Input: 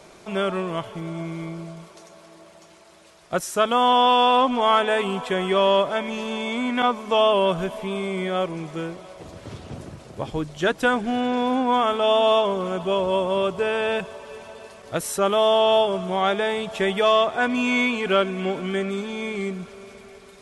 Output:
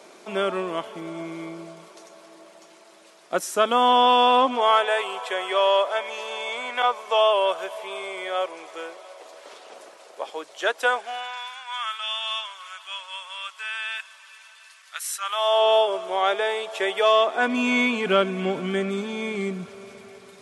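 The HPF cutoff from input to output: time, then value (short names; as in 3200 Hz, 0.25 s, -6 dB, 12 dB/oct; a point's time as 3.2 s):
HPF 24 dB/oct
4.36 s 230 Hz
4.91 s 490 Hz
10.91 s 490 Hz
11.51 s 1400 Hz
15.2 s 1400 Hz
15.67 s 400 Hz
17 s 400 Hz
18.22 s 97 Hz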